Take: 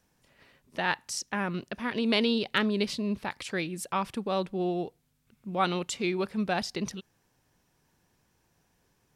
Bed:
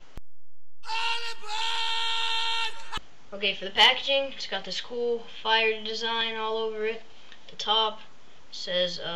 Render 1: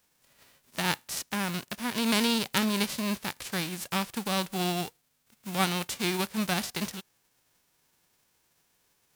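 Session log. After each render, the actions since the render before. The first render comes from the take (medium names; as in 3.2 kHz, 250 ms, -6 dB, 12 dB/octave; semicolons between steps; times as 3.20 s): formants flattened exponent 0.3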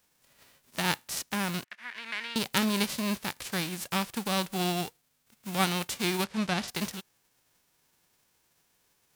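1.64–2.36 s: band-pass filter 1.9 kHz, Q 2.8; 6.24–6.68 s: distance through air 68 m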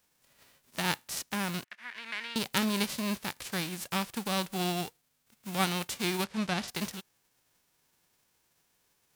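trim -2 dB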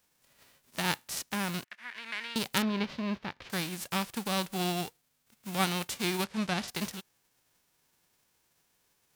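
2.62–3.50 s: distance through air 250 m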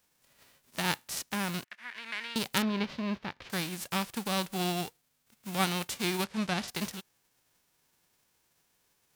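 no audible change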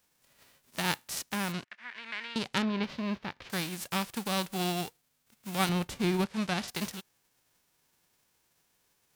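1.52–2.83 s: distance through air 80 m; 5.69–6.26 s: tilt EQ -2.5 dB/octave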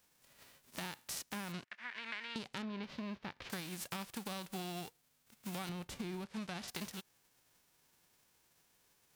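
peak limiter -22 dBFS, peak gain reduction 10 dB; compression 6:1, threshold -40 dBFS, peak gain reduction 12 dB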